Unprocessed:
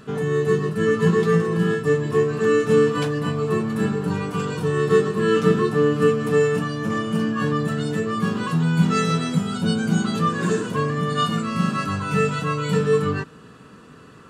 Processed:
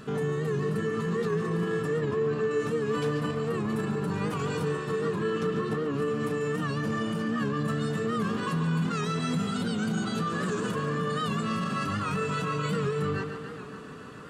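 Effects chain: 5.01–5.98 high shelf 7600 Hz -6 dB; limiter -22.5 dBFS, peak gain reduction 16.5 dB; 1.99–2.51 air absorption 90 m; tape echo 0.142 s, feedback 86%, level -7 dB, low-pass 5800 Hz; record warp 78 rpm, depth 100 cents

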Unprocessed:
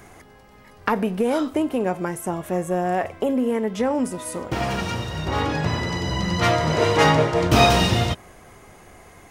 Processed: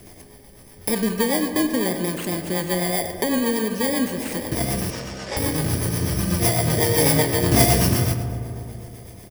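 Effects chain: FFT order left unsorted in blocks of 32 samples; 4.9–5.37 elliptic band-pass 490–7100 Hz; on a send: feedback echo 93 ms, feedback 48%, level -16 dB; on the sum: rotary speaker horn 8 Hz; in parallel at -2.5 dB: compressor, threshold -30 dBFS, peak gain reduction 16.5 dB; on the sum: digital reverb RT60 3 s, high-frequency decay 0.3×, pre-delay 0 ms, DRR 8.5 dB

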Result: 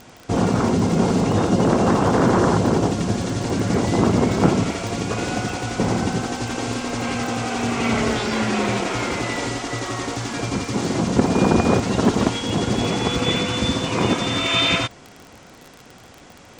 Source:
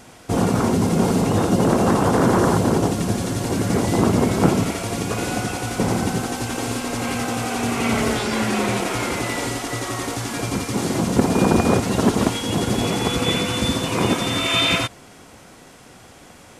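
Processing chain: LPF 7500 Hz 24 dB/oct; crackle 30/s -29 dBFS

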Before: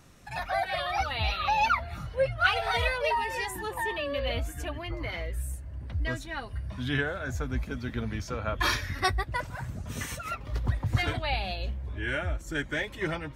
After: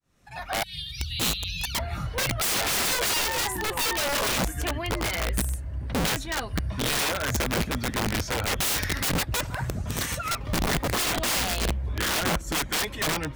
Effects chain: opening faded in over 1.10 s; 0.63–1.75 Chebyshev band-stop 160–3300 Hz, order 3; wrapped overs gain 27 dB; gain +6.5 dB

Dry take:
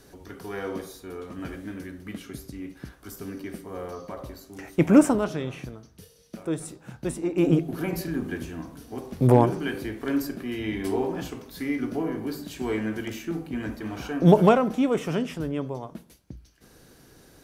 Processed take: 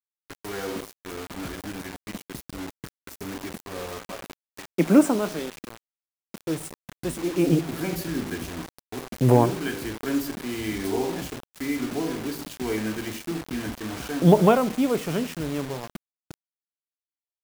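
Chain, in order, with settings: expander -39 dBFS; 3.99–6.39 elliptic high-pass 170 Hz, stop band 40 dB; bit-crush 6-bit

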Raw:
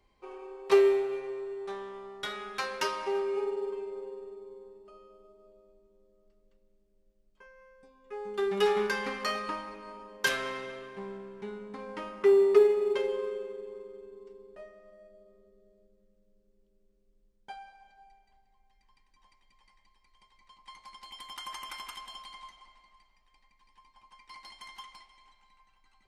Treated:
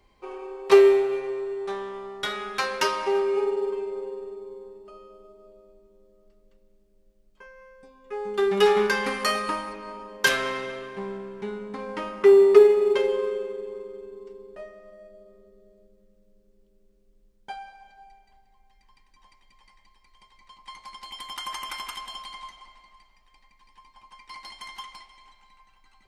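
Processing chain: 9.06–9.73 bell 10000 Hz +11 dB 0.65 oct; gain +7 dB

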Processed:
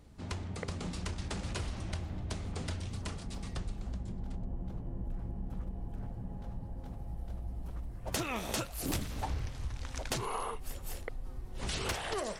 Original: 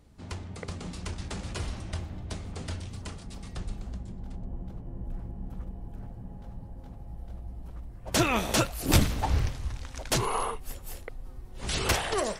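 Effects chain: 6.85–9.28 high shelf 8100 Hz +5.5 dB; compressor 5:1, threshold -34 dBFS, peak gain reduction 17 dB; Doppler distortion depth 0.18 ms; gain +1 dB

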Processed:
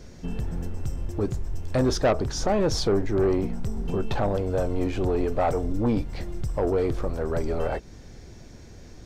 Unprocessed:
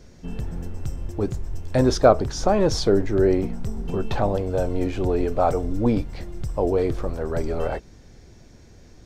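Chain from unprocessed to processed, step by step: in parallel at -0.5 dB: compressor, threshold -32 dBFS, peak gain reduction 21 dB; on the sum: soft clip -13 dBFS, distortion -14 dB; gain -2.5 dB

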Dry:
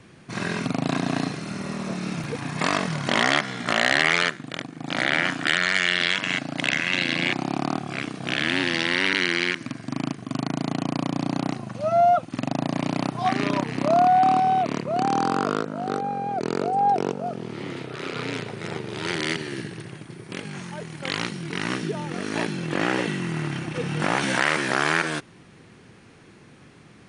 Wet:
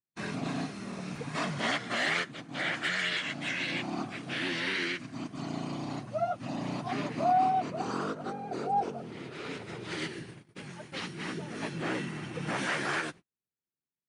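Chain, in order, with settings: plain phase-vocoder stretch 0.52×; gate -41 dBFS, range -44 dB; gain -5.5 dB

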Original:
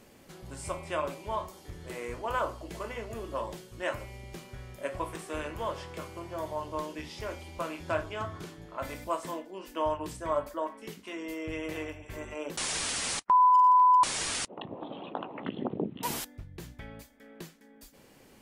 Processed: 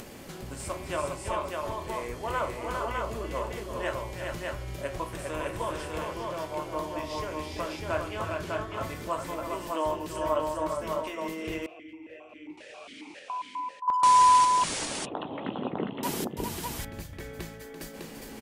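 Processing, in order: upward compressor, threshold -34 dBFS; tapped delay 0.338/0.406/0.603 s -9.5/-4.5/-3 dB; 11.66–13.88 vowel sequencer 7.4 Hz

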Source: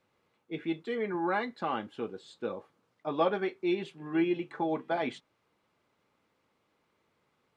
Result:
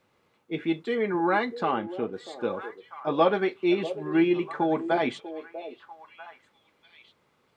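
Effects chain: 1.71–2.13 high shelf 3000 Hz -10.5 dB; on a send: delay with a stepping band-pass 0.644 s, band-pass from 470 Hz, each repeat 1.4 oct, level -9.5 dB; on the sum: gain +6 dB

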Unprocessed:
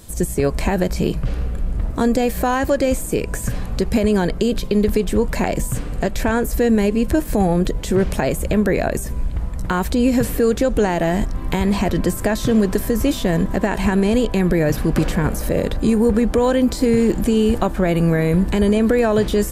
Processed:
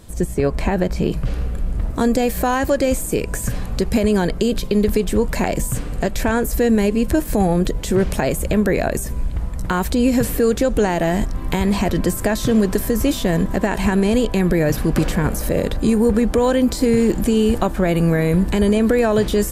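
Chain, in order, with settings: high shelf 5000 Hz -9 dB, from 1.12 s +3 dB

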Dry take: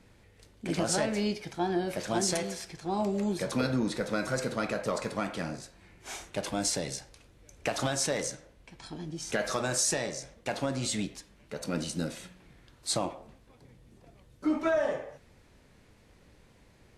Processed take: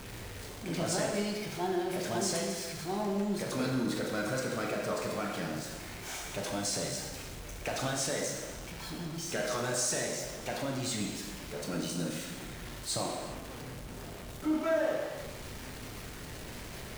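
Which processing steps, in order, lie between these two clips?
zero-crossing step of -33.5 dBFS; non-linear reverb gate 0.44 s falling, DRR 1 dB; gain -7 dB

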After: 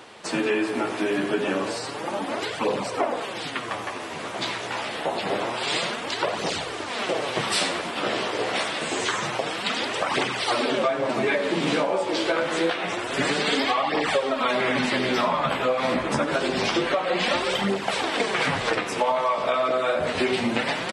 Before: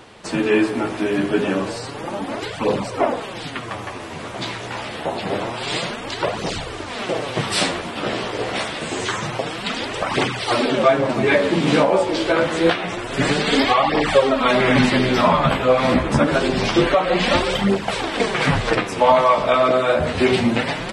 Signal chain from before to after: HPF 330 Hz 6 dB/oct; compressor, threshold -20 dBFS, peak gain reduction 10 dB; feedback echo 92 ms, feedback 47%, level -16 dB

